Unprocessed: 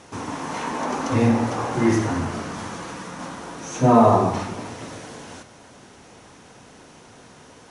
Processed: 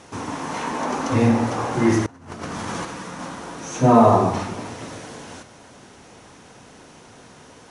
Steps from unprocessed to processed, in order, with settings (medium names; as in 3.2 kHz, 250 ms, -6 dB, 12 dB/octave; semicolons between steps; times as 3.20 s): 2.06–2.85 s: compressor with a negative ratio -33 dBFS, ratio -0.5; trim +1 dB